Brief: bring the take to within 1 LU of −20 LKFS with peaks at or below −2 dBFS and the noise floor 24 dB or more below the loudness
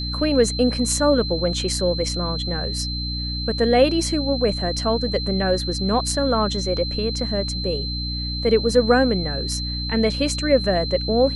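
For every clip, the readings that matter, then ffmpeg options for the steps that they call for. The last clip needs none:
mains hum 60 Hz; hum harmonics up to 300 Hz; level of the hum −26 dBFS; interfering tone 4,100 Hz; level of the tone −28 dBFS; integrated loudness −21.0 LKFS; sample peak −4.5 dBFS; target loudness −20.0 LKFS
→ -af "bandreject=frequency=60:width_type=h:width=4,bandreject=frequency=120:width_type=h:width=4,bandreject=frequency=180:width_type=h:width=4,bandreject=frequency=240:width_type=h:width=4,bandreject=frequency=300:width_type=h:width=4"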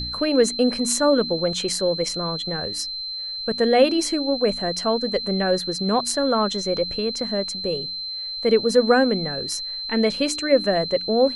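mains hum none found; interfering tone 4,100 Hz; level of the tone −28 dBFS
→ -af "bandreject=frequency=4100:width=30"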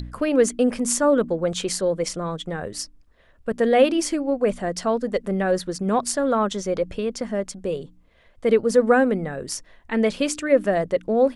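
interfering tone none found; integrated loudness −22.5 LKFS; sample peak −5.0 dBFS; target loudness −20.0 LKFS
→ -af "volume=2.5dB"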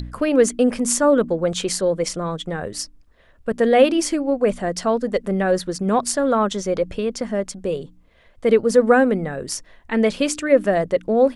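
integrated loudness −20.0 LKFS; sample peak −2.5 dBFS; background noise floor −53 dBFS

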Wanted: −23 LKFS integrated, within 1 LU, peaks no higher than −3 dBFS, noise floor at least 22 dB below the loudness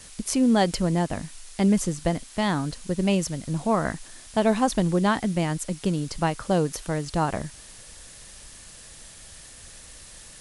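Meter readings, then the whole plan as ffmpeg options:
background noise floor −46 dBFS; target noise floor −47 dBFS; integrated loudness −25.0 LKFS; sample peak −8.0 dBFS; target loudness −23.0 LKFS
→ -af "afftdn=noise_reduction=6:noise_floor=-46"
-af "volume=2dB"

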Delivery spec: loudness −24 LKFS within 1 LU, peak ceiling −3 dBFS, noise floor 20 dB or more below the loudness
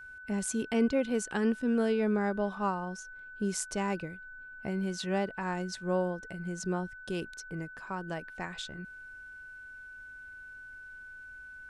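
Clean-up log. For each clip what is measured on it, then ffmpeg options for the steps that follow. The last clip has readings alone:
interfering tone 1,500 Hz; level of the tone −45 dBFS; integrated loudness −33.0 LKFS; sample peak −17.0 dBFS; target loudness −24.0 LKFS
→ -af "bandreject=frequency=1500:width=30"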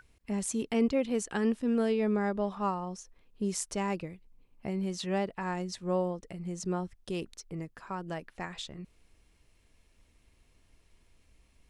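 interfering tone none found; integrated loudness −33.0 LKFS; sample peak −16.5 dBFS; target loudness −24.0 LKFS
→ -af "volume=9dB"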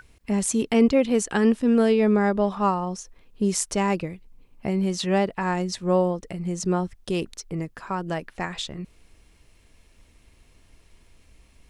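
integrated loudness −24.0 LKFS; sample peak −7.5 dBFS; background noise floor −58 dBFS

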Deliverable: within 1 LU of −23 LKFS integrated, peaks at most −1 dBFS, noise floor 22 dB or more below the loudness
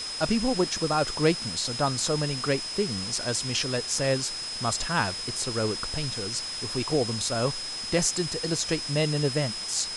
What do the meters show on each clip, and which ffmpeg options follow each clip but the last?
interfering tone 5,100 Hz; level of the tone −33 dBFS; background noise floor −35 dBFS; target noise floor −49 dBFS; integrated loudness −27.0 LKFS; sample peak −10.0 dBFS; target loudness −23.0 LKFS
→ -af "bandreject=frequency=5100:width=30"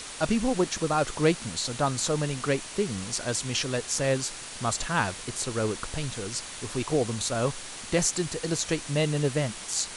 interfering tone none found; background noise floor −40 dBFS; target noise floor −50 dBFS
→ -af "afftdn=noise_reduction=10:noise_floor=-40"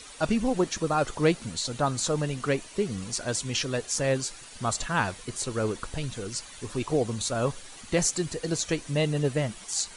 background noise floor −46 dBFS; target noise floor −51 dBFS
→ -af "afftdn=noise_reduction=6:noise_floor=-46"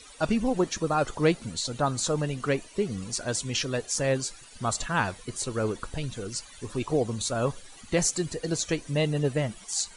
background noise floor −49 dBFS; target noise floor −51 dBFS
→ -af "afftdn=noise_reduction=6:noise_floor=-49"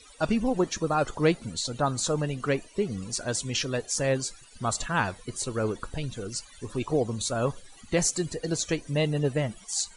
background noise floor −52 dBFS; integrated loudness −28.5 LKFS; sample peak −10.5 dBFS; target loudness −23.0 LKFS
→ -af "volume=5.5dB"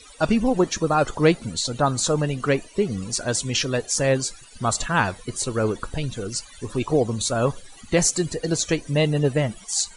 integrated loudness −23.0 LKFS; sample peak −5.0 dBFS; background noise floor −46 dBFS

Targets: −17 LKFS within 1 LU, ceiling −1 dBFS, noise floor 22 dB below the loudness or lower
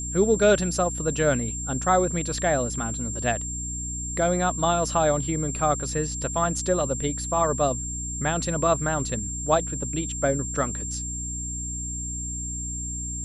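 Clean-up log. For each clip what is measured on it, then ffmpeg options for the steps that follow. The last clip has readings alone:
mains hum 60 Hz; hum harmonics up to 300 Hz; level of the hum −32 dBFS; interfering tone 7,400 Hz; level of the tone −31 dBFS; integrated loudness −25.0 LKFS; sample peak −7.0 dBFS; target loudness −17.0 LKFS
→ -af "bandreject=frequency=60:width_type=h:width=6,bandreject=frequency=120:width_type=h:width=6,bandreject=frequency=180:width_type=h:width=6,bandreject=frequency=240:width_type=h:width=6,bandreject=frequency=300:width_type=h:width=6"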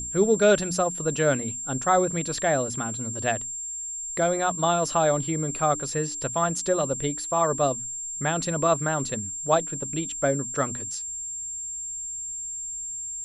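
mains hum none found; interfering tone 7,400 Hz; level of the tone −31 dBFS
→ -af "bandreject=frequency=7400:width=30"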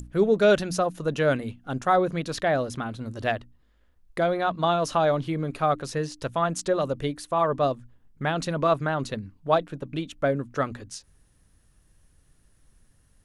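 interfering tone none found; integrated loudness −26.0 LKFS; sample peak −7.5 dBFS; target loudness −17.0 LKFS
→ -af "volume=9dB,alimiter=limit=-1dB:level=0:latency=1"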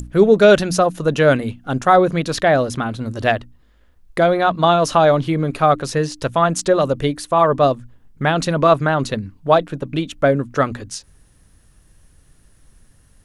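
integrated loudness −17.0 LKFS; sample peak −1.0 dBFS; background noise floor −54 dBFS

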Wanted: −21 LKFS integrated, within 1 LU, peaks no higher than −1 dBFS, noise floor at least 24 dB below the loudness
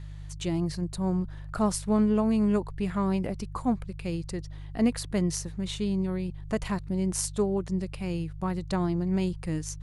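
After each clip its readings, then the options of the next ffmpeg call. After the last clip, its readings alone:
mains hum 50 Hz; hum harmonics up to 150 Hz; level of the hum −37 dBFS; integrated loudness −29.0 LKFS; sample peak −10.5 dBFS; target loudness −21.0 LKFS
→ -af "bandreject=frequency=50:width_type=h:width=4,bandreject=frequency=100:width_type=h:width=4,bandreject=frequency=150:width_type=h:width=4"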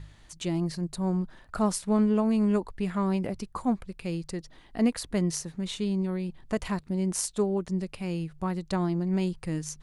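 mains hum none found; integrated loudness −29.5 LKFS; sample peak −10.5 dBFS; target loudness −21.0 LKFS
→ -af "volume=8.5dB"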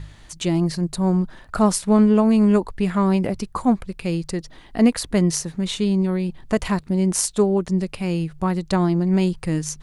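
integrated loudness −21.0 LKFS; sample peak −2.0 dBFS; background noise floor −46 dBFS

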